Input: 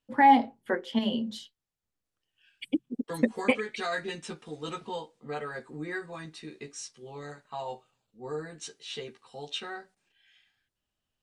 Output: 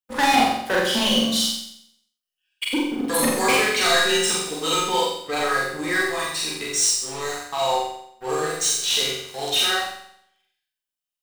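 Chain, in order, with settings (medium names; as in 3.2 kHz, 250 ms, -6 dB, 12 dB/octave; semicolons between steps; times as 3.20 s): RIAA curve recording; hum notches 50/100/150/200/250 Hz; waveshaping leveller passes 5; flutter echo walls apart 7.6 m, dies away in 0.7 s; Schroeder reverb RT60 0.4 s, combs from 30 ms, DRR -1 dB; trim -7.5 dB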